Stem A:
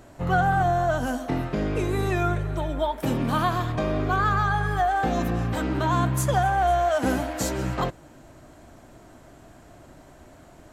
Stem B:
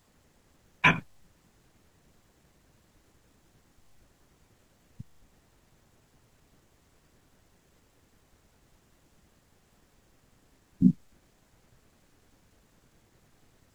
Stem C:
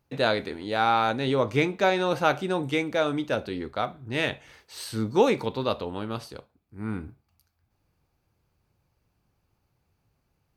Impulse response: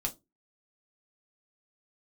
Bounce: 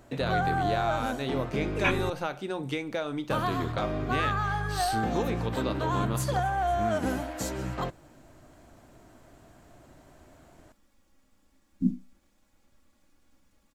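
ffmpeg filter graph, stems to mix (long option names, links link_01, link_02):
-filter_complex "[0:a]volume=-6dB,asplit=3[link_01][link_02][link_03];[link_01]atrim=end=2.1,asetpts=PTS-STARTPTS,afade=type=out:start_time=2.096:duration=0.004:curve=hsin[link_04];[link_02]atrim=start=2.1:end=3.3,asetpts=PTS-STARTPTS,volume=0[link_05];[link_03]atrim=start=3.3,asetpts=PTS-STARTPTS,afade=type=in:duration=0.004:curve=hsin[link_06];[link_04][link_05][link_06]concat=n=3:v=0:a=1[link_07];[1:a]aecho=1:1:3.6:0.74,adelay=1000,volume=-9.5dB,asplit=2[link_08][link_09];[link_09]volume=-9dB[link_10];[2:a]acompressor=threshold=-31dB:ratio=8,bandreject=frequency=60:width_type=h:width=6,bandreject=frequency=120:width_type=h:width=6,bandreject=frequency=180:width_type=h:width=6,volume=2.5dB[link_11];[3:a]atrim=start_sample=2205[link_12];[link_10][link_12]afir=irnorm=-1:irlink=0[link_13];[link_07][link_08][link_11][link_13]amix=inputs=4:normalize=0"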